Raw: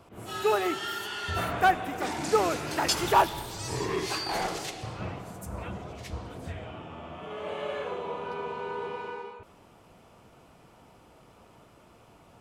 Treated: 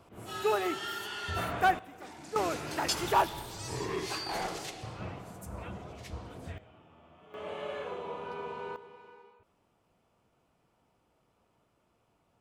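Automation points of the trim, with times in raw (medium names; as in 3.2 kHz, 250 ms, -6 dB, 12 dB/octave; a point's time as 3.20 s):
-3.5 dB
from 1.79 s -15.5 dB
from 2.36 s -4.5 dB
from 6.58 s -16.5 dB
from 7.34 s -4.5 dB
from 8.76 s -16.5 dB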